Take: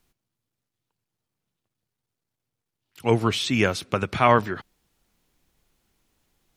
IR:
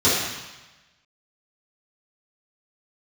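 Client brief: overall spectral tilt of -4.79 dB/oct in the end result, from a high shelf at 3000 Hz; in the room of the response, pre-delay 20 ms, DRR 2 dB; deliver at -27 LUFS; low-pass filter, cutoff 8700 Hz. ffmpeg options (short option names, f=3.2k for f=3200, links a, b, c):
-filter_complex "[0:a]lowpass=8.7k,highshelf=f=3k:g=7.5,asplit=2[a][b];[1:a]atrim=start_sample=2205,adelay=20[c];[b][c]afir=irnorm=-1:irlink=0,volume=-22dB[d];[a][d]amix=inputs=2:normalize=0,volume=-8.5dB"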